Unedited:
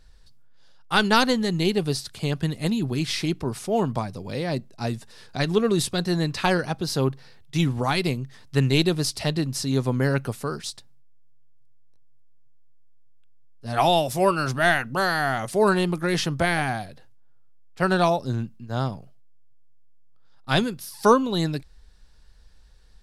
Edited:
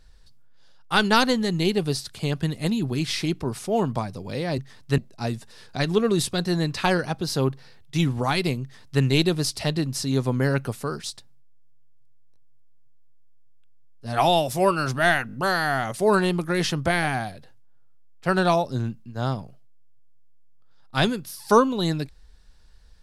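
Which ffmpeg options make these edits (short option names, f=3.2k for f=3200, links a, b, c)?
-filter_complex "[0:a]asplit=6[a][b][c][d][e][f];[a]atrim=end=4.582[g];[b]atrim=start=8.218:end=8.622[h];[c]atrim=start=4.578:end=14.892[i];[d]atrim=start=14.868:end=14.892[j];[e]atrim=start=14.868:end=14.892[k];[f]atrim=start=14.868[l];[g][h]acrossfade=d=0.004:c1=hsin:c2=hsin[m];[m][i]acrossfade=d=0.004:c1=hsin:c2=hsin[n];[n][j]acrossfade=d=0.004:c1=hsin:c2=hsin[o];[o][k]acrossfade=d=0.004:c1=hsin:c2=hsin[p];[p][l]acrossfade=d=0.004:c1=hsin:c2=hsin"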